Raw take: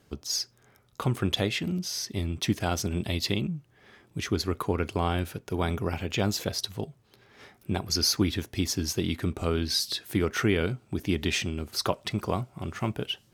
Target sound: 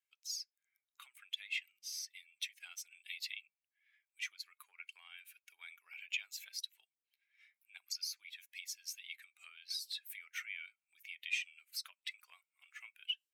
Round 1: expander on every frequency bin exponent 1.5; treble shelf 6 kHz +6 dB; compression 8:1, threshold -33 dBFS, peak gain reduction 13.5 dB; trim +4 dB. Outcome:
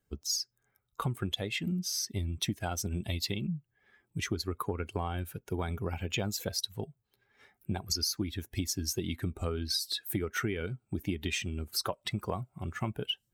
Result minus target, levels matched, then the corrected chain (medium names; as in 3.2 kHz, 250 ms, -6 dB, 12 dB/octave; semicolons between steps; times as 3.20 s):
2 kHz band -6.0 dB
expander on every frequency bin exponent 1.5; treble shelf 6 kHz +6 dB; compression 8:1, threshold -33 dBFS, peak gain reduction 13.5 dB; ladder high-pass 2.1 kHz, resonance 65%; trim +4 dB